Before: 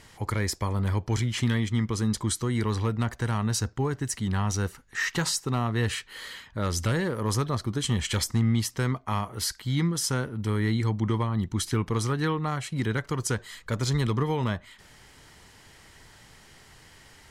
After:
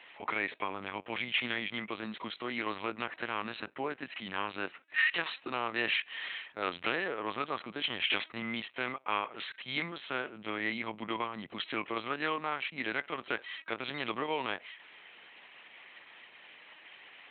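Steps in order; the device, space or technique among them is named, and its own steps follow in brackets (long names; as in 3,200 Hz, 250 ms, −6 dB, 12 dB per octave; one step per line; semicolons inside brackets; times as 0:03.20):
talking toy (linear-prediction vocoder at 8 kHz pitch kept; high-pass filter 450 Hz 12 dB per octave; parametric band 2,500 Hz +11 dB 0.51 octaves)
level −2 dB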